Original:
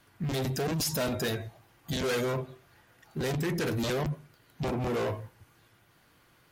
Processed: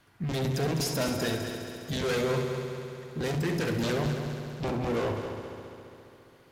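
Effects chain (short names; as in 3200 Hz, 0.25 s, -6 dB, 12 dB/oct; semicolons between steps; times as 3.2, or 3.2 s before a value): high shelf 10000 Hz -7.5 dB; on a send: multi-head echo 68 ms, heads first and third, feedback 72%, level -9.5 dB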